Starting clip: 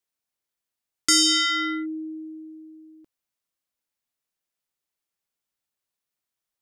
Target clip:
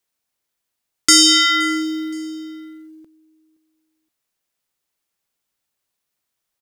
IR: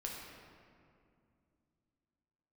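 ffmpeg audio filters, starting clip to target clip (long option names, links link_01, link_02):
-af "acrusher=bits=8:mode=log:mix=0:aa=0.000001,aecho=1:1:520|1040:0.075|0.0262,volume=7.5dB"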